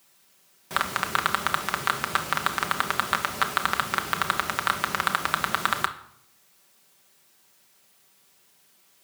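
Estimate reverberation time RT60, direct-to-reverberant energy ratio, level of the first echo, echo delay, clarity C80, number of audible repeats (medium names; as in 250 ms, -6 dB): 0.75 s, 4.0 dB, no echo, no echo, 17.0 dB, no echo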